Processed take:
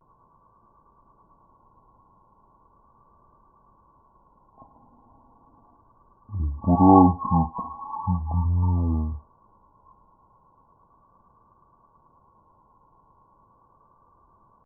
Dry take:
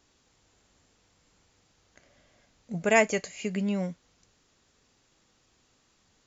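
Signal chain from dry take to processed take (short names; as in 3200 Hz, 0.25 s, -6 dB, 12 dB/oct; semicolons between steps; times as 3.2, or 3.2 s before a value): nonlinear frequency compression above 1900 Hz 4:1; vibrato 0.87 Hz 43 cents; speed mistake 78 rpm record played at 33 rpm; gain +6 dB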